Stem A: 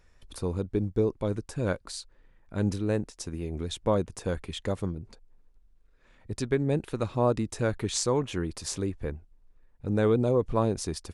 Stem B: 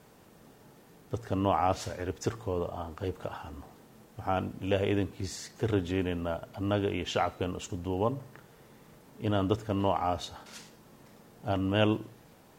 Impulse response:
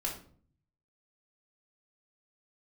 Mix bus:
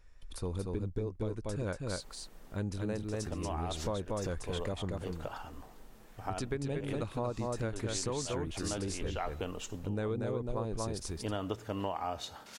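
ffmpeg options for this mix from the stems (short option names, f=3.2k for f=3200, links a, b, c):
-filter_complex "[0:a]lowshelf=f=110:g=9,volume=-3.5dB,asplit=3[a][b][c];[b]volume=-3.5dB[d];[1:a]adelay=2000,volume=-1.5dB[e];[c]apad=whole_len=643079[f];[e][f]sidechaincompress=threshold=-35dB:ratio=10:attack=9.6:release=272[g];[d]aecho=0:1:235:1[h];[a][g][h]amix=inputs=3:normalize=0,equalizer=f=130:w=0.34:g=-5,acompressor=threshold=-31dB:ratio=6"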